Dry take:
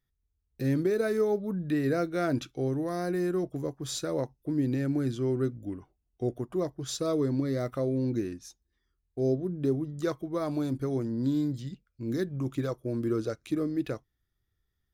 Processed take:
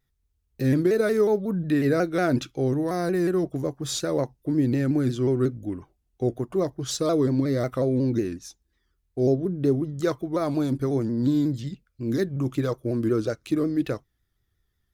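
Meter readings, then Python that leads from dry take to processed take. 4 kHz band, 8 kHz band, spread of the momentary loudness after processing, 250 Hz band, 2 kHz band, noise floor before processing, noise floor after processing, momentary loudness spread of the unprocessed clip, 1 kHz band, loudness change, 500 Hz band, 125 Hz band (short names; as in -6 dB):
+5.5 dB, +5.5 dB, 7 LU, +5.5 dB, +6.0 dB, -80 dBFS, -74 dBFS, 7 LU, +5.5 dB, +5.5 dB, +5.5 dB, +5.5 dB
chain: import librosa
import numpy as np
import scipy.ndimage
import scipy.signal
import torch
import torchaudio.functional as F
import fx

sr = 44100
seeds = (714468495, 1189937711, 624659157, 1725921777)

y = fx.vibrato_shape(x, sr, shape='saw_down', rate_hz=5.5, depth_cents=100.0)
y = y * 10.0 ** (5.5 / 20.0)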